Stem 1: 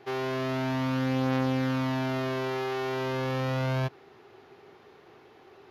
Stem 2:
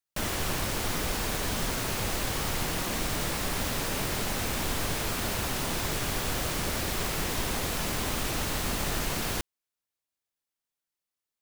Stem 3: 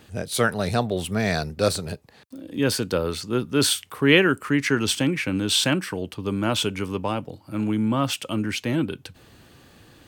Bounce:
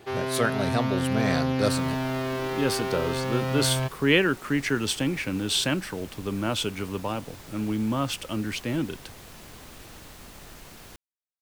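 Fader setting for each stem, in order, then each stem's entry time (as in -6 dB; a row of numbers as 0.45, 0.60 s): +1.0, -15.5, -4.0 dB; 0.00, 1.55, 0.00 s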